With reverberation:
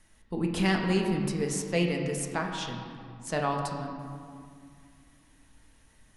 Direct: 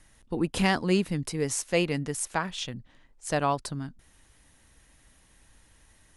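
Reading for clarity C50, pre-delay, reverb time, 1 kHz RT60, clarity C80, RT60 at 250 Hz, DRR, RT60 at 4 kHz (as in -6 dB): 4.0 dB, 5 ms, 2.2 s, 2.3 s, 5.0 dB, 3.3 s, 1.0 dB, 1.2 s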